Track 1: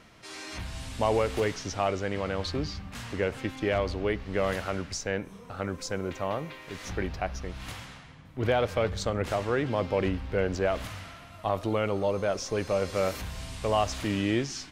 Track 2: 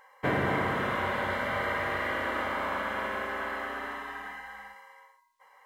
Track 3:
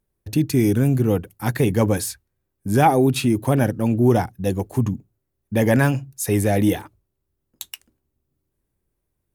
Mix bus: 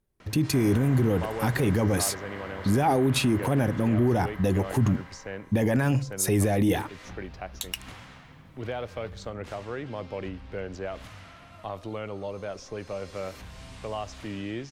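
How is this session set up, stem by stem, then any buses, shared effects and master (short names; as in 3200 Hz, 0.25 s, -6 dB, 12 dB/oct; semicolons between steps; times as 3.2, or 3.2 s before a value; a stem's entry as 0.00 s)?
-7.5 dB, 0.20 s, bus A, no send, three-band squash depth 40%
-15.0 dB, 0.30 s, no bus, no send, per-bin compression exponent 0.4
-1.0 dB, 0.00 s, bus A, no send, AGC gain up to 12 dB
bus A: 0.0 dB, high shelf 11000 Hz -8 dB; limiter -15 dBFS, peak gain reduction 12.5 dB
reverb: off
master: dry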